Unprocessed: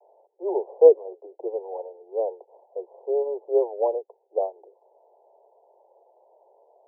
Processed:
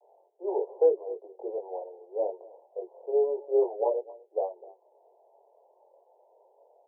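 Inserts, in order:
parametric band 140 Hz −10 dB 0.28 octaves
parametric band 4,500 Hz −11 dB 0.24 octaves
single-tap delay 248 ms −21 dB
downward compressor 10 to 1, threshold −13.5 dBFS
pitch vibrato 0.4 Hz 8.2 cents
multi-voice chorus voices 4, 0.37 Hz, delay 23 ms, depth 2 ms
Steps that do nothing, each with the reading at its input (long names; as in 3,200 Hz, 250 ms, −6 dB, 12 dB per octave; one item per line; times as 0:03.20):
parametric band 140 Hz: nothing at its input below 320 Hz
parametric band 4,500 Hz: nothing at its input above 1,000 Hz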